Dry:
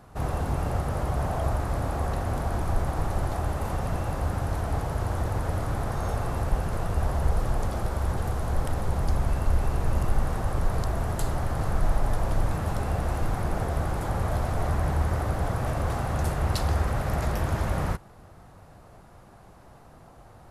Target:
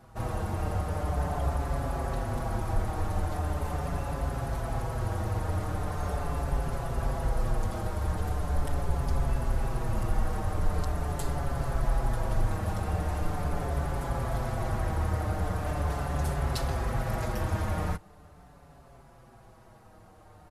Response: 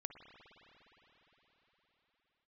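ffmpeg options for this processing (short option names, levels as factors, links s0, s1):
-filter_complex "[0:a]asplit=2[s0][s1];[s1]adelay=5.7,afreqshift=-0.41[s2];[s0][s2]amix=inputs=2:normalize=1"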